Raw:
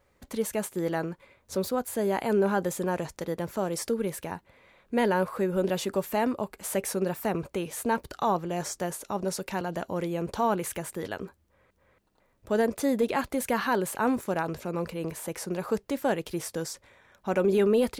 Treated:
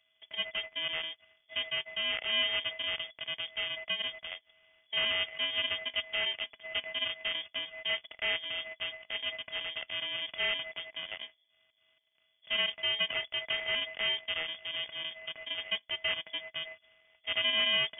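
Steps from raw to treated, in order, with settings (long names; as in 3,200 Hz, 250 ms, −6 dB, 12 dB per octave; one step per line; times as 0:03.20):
samples sorted by size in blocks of 32 samples
voice inversion scrambler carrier 3,400 Hz
level −6 dB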